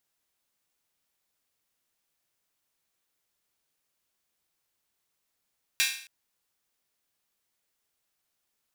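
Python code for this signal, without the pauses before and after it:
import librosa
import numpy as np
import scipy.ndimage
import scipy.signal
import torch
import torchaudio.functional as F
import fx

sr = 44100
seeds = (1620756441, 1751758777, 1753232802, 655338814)

y = fx.drum_hat_open(sr, length_s=0.27, from_hz=2200.0, decay_s=0.52)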